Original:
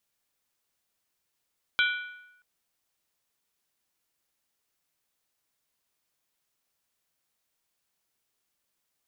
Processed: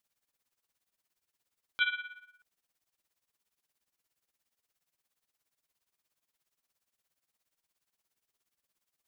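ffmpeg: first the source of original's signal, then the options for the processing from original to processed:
-f lavfi -i "aevalsrc='0.0891*pow(10,-3*t/0.9)*sin(2*PI*1470*t)+0.0631*pow(10,-3*t/0.713)*sin(2*PI*2343.2*t)+0.0447*pow(10,-3*t/0.616)*sin(2*PI*3139.9*t)+0.0316*pow(10,-3*t/0.594)*sin(2*PI*3375.1*t)+0.0224*pow(10,-3*t/0.553)*sin(2*PI*3899.9*t)':duration=0.63:sample_rate=44100"
-af "tremolo=f=17:d=0.78"

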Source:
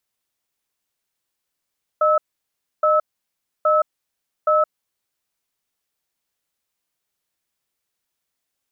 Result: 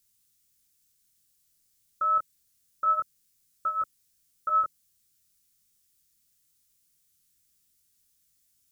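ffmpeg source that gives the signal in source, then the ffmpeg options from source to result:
-f lavfi -i "aevalsrc='0.158*(sin(2*PI*614*t)+sin(2*PI*1300*t))*clip(min(mod(t,0.82),0.17-mod(t,0.82))/0.005,0,1)':duration=2.73:sample_rate=44100"
-af "bass=frequency=250:gain=14,treble=frequency=4000:gain=15,flanger=delay=18.5:depth=7.9:speed=0.25,asuperstop=centerf=710:order=4:qfactor=0.89"

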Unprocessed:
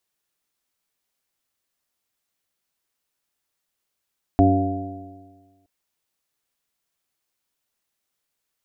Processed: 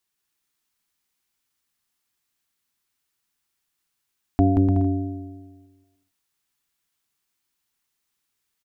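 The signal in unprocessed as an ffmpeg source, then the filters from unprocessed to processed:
-f lavfi -i "aevalsrc='0.158*pow(10,-3*t/1.48)*sin(2*PI*93.73*t)+0.0501*pow(10,-3*t/1.48)*sin(2*PI*188.21*t)+0.211*pow(10,-3*t/1.48)*sin(2*PI*284.19*t)+0.075*pow(10,-3*t/1.48)*sin(2*PI*382.4*t)+0.0224*pow(10,-3*t/1.48)*sin(2*PI*483.54*t)+0.0211*pow(10,-3*t/1.48)*sin(2*PI*588.26*t)+0.158*pow(10,-3*t/1.48)*sin(2*PI*697.2*t)':duration=1.27:sample_rate=44100"
-filter_complex "[0:a]equalizer=frequency=570:width_type=o:width=0.67:gain=-10,asplit=2[link_01][link_02];[link_02]aecho=0:1:180|297|373|422.5|454.6:0.631|0.398|0.251|0.158|0.1[link_03];[link_01][link_03]amix=inputs=2:normalize=0"

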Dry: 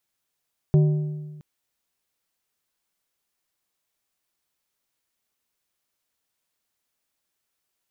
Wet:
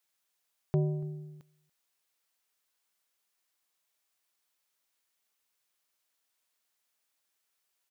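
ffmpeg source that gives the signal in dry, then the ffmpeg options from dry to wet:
-f lavfi -i "aevalsrc='0.251*pow(10,-3*t/1.41)*sin(2*PI*151*t)+0.075*pow(10,-3*t/1.071)*sin(2*PI*377.5*t)+0.0224*pow(10,-3*t/0.93)*sin(2*PI*604*t)+0.00668*pow(10,-3*t/0.87)*sin(2*PI*755*t)+0.002*pow(10,-3*t/0.804)*sin(2*PI*981.5*t)':duration=0.67:sample_rate=44100"
-filter_complex "[0:a]lowshelf=frequency=340:gain=-12,asplit=2[link_01][link_02];[link_02]adelay=285.7,volume=-24dB,highshelf=frequency=4000:gain=-6.43[link_03];[link_01][link_03]amix=inputs=2:normalize=0"

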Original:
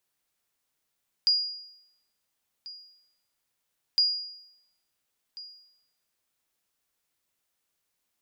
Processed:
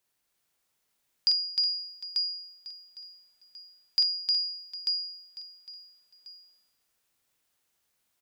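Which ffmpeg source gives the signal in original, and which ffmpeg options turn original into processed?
-f lavfi -i "aevalsrc='0.15*(sin(2*PI*4860*mod(t,2.71))*exp(-6.91*mod(t,2.71)/0.8)+0.106*sin(2*PI*4860*max(mod(t,2.71)-1.39,0))*exp(-6.91*max(mod(t,2.71)-1.39,0)/0.8))':duration=5.42:sample_rate=44100"
-af "aecho=1:1:45|308|367|755|891:0.631|0.668|0.335|0.168|0.531"

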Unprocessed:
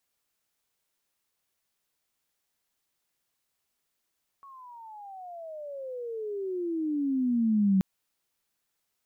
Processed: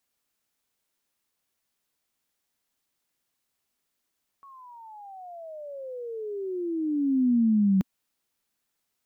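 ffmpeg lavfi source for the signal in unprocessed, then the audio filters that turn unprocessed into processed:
-f lavfi -i "aevalsrc='pow(10,(-19+27*(t/3.38-1))/20)*sin(2*PI*1120*3.38/(-31*log(2)/12)*(exp(-31*log(2)/12*t/3.38)-1))':duration=3.38:sample_rate=44100"
-af "equalizer=frequency=250:width=2.6:gain=4.5"

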